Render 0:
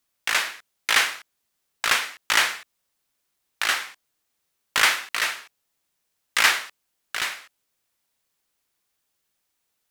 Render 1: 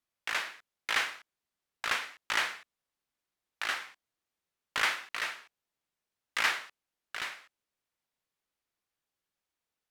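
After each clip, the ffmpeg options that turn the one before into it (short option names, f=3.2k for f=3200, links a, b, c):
-af "aemphasis=mode=reproduction:type=cd,volume=-8.5dB"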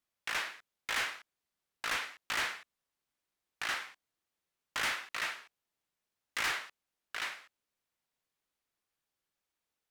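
-af "volume=29dB,asoftclip=hard,volume=-29dB"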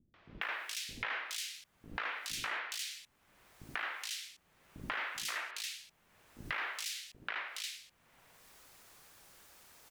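-filter_complex "[0:a]asplit=2[a][b];[b]acompressor=mode=upward:threshold=-39dB:ratio=2.5,volume=-1dB[c];[a][c]amix=inputs=2:normalize=0,acrossover=split=280|3200[d][e][f];[e]adelay=140[g];[f]adelay=420[h];[d][g][h]amix=inputs=3:normalize=0,acompressor=threshold=-39dB:ratio=6,volume=2.5dB"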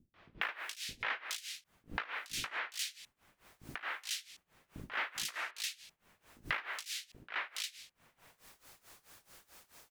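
-af "tremolo=f=4.6:d=0.9,volume=3.5dB"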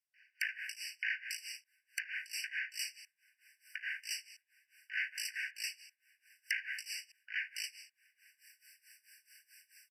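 -af "aeval=exprs='(mod(13.3*val(0)+1,2)-1)/13.3':c=same,aresample=32000,aresample=44100,afftfilt=real='re*eq(mod(floor(b*sr/1024/1500),2),1)':imag='im*eq(mod(floor(b*sr/1024/1500),2),1)':win_size=1024:overlap=0.75,volume=2dB"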